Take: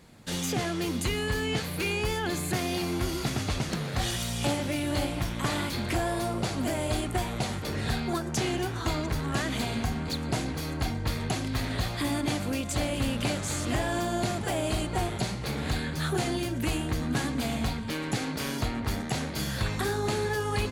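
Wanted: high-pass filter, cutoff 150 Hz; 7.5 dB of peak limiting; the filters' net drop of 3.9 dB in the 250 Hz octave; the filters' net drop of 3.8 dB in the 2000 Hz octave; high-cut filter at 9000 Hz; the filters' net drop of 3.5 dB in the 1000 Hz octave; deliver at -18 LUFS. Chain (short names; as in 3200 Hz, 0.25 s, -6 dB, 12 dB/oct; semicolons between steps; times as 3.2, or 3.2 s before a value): HPF 150 Hz; LPF 9000 Hz; bell 250 Hz -4 dB; bell 1000 Hz -4 dB; bell 2000 Hz -3.5 dB; gain +17.5 dB; limiter -8.5 dBFS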